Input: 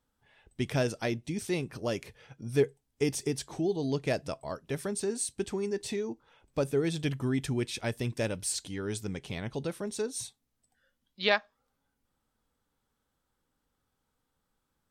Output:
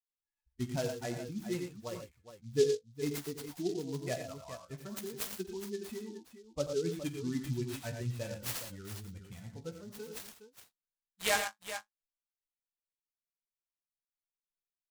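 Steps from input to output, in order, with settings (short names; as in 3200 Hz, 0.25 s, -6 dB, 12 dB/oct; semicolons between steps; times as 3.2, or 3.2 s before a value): per-bin expansion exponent 2; flange 0.57 Hz, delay 9.3 ms, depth 9.9 ms, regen +30%; on a send: tapped delay 48/88/107/116/415 ms -15.5/-9.5/-14.5/-10/-11 dB; on the sum: noise-modulated delay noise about 4800 Hz, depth 0.054 ms; gain +2 dB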